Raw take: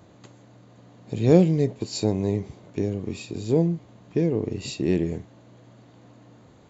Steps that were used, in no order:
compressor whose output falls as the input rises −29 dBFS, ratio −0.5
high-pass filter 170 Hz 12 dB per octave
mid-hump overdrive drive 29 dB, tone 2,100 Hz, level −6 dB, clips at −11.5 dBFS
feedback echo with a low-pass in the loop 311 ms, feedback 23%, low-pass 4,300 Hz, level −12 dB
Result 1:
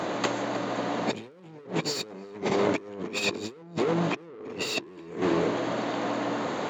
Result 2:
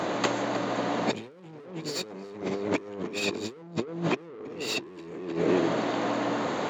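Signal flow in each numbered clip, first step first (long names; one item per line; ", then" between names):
mid-hump overdrive, then feedback echo with a low-pass in the loop, then compressor whose output falls as the input rises, then high-pass filter
feedback echo with a low-pass in the loop, then mid-hump overdrive, then compressor whose output falls as the input rises, then high-pass filter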